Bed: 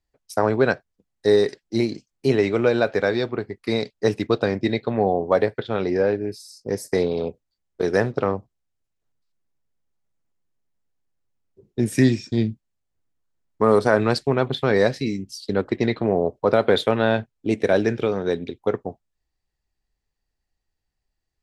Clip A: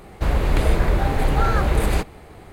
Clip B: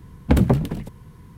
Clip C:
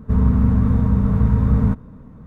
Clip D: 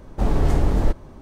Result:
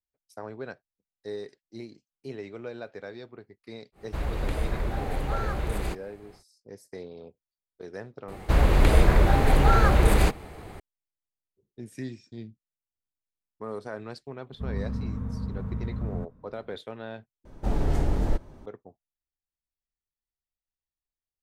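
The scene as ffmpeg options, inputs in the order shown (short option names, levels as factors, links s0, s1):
-filter_complex "[1:a]asplit=2[s0][s1];[0:a]volume=0.106[s2];[4:a]bandreject=f=1100:w=12[s3];[s2]asplit=2[s4][s5];[s4]atrim=end=17.454[s6];[s3]atrim=end=1.21,asetpts=PTS-STARTPTS,volume=0.501[s7];[s5]atrim=start=18.656[s8];[s0]atrim=end=2.52,asetpts=PTS-STARTPTS,volume=0.299,afade=t=in:d=0.1,afade=t=out:st=2.42:d=0.1,adelay=3920[s9];[s1]atrim=end=2.52,asetpts=PTS-STARTPTS,afade=t=in:d=0.004:c=hsin,afade=t=out:st=2.516:d=0.004:c=hsin,adelay=8280[s10];[3:a]atrim=end=2.26,asetpts=PTS-STARTPTS,volume=0.158,afade=t=in:d=0.004:c=hsin,afade=t=out:st=2.256:d=0.004:c=hsin,adelay=14510[s11];[s6][s7]acrossfade=d=0.004:c1=hsin:c2=hsin[s12];[s12][s8]acrossfade=d=0.004:c1=hsin:c2=hsin[s13];[s13][s9][s10][s11]amix=inputs=4:normalize=0"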